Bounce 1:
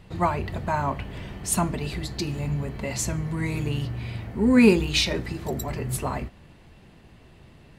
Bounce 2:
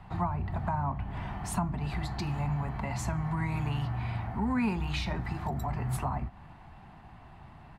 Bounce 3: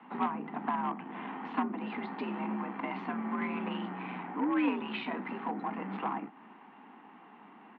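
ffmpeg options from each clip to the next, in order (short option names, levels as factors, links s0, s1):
-filter_complex "[0:a]firequalizer=gain_entry='entry(150,0);entry(500,-11);entry(750,10);entry(1800,0);entry(2900,-6);entry(6100,-11)':delay=0.05:min_phase=1,acrossover=split=230|470[s0][s1][s2];[s0]acompressor=threshold=0.0355:ratio=4[s3];[s1]acompressor=threshold=0.00501:ratio=4[s4];[s2]acompressor=threshold=0.0158:ratio=4[s5];[s3][s4][s5]amix=inputs=3:normalize=0"
-af "aeval=exprs='0.133*(cos(1*acos(clip(val(0)/0.133,-1,1)))-cos(1*PI/2))+0.0237*(cos(4*acos(clip(val(0)/0.133,-1,1)))-cos(4*PI/2))+0.0211*(cos(6*acos(clip(val(0)/0.133,-1,1)))-cos(6*PI/2))':c=same,highpass=f=160:t=q:w=0.5412,highpass=f=160:t=q:w=1.307,lowpass=f=3100:t=q:w=0.5176,lowpass=f=3100:t=q:w=0.7071,lowpass=f=3100:t=q:w=1.932,afreqshift=66"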